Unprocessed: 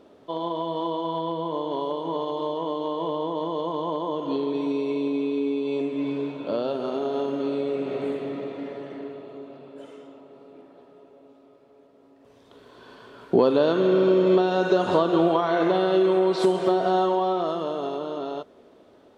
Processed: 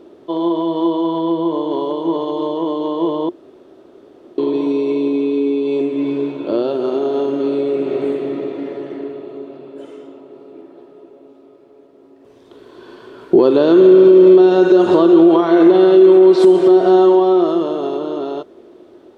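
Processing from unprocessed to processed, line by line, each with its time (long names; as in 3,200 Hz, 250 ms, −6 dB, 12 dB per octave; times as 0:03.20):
0:03.29–0:04.38: fill with room tone
whole clip: parametric band 350 Hz +14.5 dB 0.34 octaves; boost into a limiter +5.5 dB; level −1 dB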